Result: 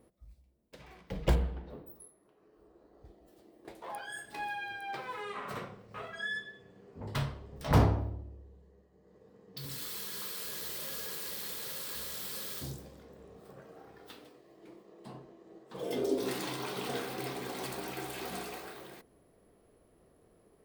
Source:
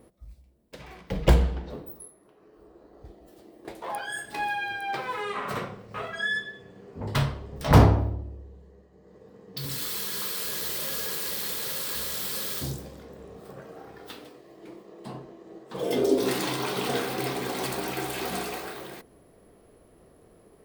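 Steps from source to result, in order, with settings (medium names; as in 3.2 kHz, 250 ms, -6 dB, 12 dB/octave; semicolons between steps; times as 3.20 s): 1.35–1.95 s: peaking EQ 6.3 kHz -10 dB 1.4 oct; trim -8.5 dB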